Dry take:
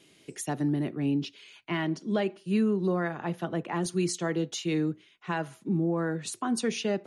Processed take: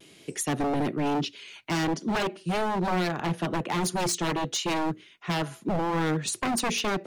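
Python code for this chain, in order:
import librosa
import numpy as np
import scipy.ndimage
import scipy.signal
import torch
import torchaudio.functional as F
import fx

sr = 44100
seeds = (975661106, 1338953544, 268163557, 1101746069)

y = 10.0 ** (-27.5 / 20.0) * (np.abs((x / 10.0 ** (-27.5 / 20.0) + 3.0) % 4.0 - 2.0) - 1.0)
y = fx.vibrato(y, sr, rate_hz=1.1, depth_cents=46.0)
y = y * librosa.db_to_amplitude(6.5)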